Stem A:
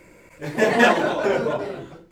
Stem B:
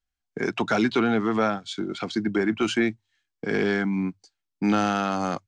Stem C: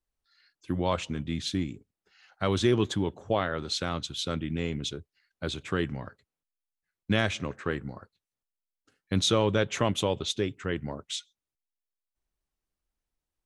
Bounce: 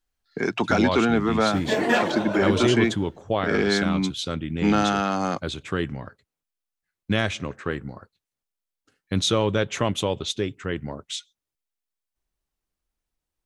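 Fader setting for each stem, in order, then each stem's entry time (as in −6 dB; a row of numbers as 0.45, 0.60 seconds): −5.5, +1.5, +2.5 decibels; 1.10, 0.00, 0.00 seconds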